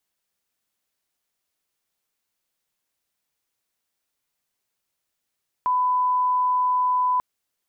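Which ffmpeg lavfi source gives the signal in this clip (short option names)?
-f lavfi -i "sine=f=1000:d=1.54:r=44100,volume=0.06dB"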